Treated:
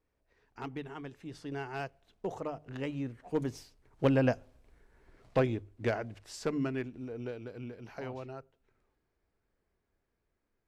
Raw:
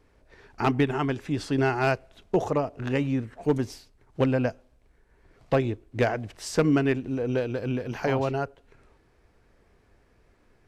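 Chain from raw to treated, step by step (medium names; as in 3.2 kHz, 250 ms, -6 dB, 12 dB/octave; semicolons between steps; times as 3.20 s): Doppler pass-by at 4.63 s, 14 m/s, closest 8 m; hum notches 50/100/150 Hz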